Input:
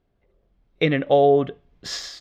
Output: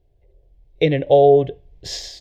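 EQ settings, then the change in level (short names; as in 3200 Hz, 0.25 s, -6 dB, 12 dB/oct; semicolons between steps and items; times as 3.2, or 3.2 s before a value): low shelf 290 Hz +11 dB; fixed phaser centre 530 Hz, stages 4; +2.0 dB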